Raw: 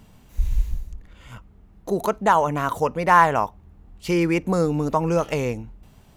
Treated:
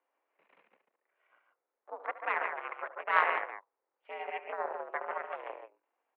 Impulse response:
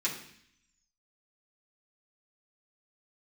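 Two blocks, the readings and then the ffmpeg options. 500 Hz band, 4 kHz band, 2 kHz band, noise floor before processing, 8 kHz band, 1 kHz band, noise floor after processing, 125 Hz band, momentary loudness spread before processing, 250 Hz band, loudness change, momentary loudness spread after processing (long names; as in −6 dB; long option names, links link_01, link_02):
−17.0 dB, −13.5 dB, −6.5 dB, −52 dBFS, below −40 dB, −13.5 dB, below −85 dBFS, below −40 dB, 16 LU, −35.0 dB, −12.5 dB, 18 LU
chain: -af "aecho=1:1:72.89|142.9:0.355|0.631,aeval=exprs='0.891*(cos(1*acos(clip(val(0)/0.891,-1,1)))-cos(1*PI/2))+0.316*(cos(2*acos(clip(val(0)/0.891,-1,1)))-cos(2*PI/2))+0.316*(cos(3*acos(clip(val(0)/0.891,-1,1)))-cos(3*PI/2))+0.282*(cos(4*acos(clip(val(0)/0.891,-1,1)))-cos(4*PI/2))+0.0398*(cos(5*acos(clip(val(0)/0.891,-1,1)))-cos(5*PI/2))':channel_layout=same,highpass=frequency=400:width_type=q:width=0.5412,highpass=frequency=400:width_type=q:width=1.307,lowpass=frequency=2400:width_type=q:width=0.5176,lowpass=frequency=2400:width_type=q:width=0.7071,lowpass=frequency=2400:width_type=q:width=1.932,afreqshift=81,volume=-6.5dB"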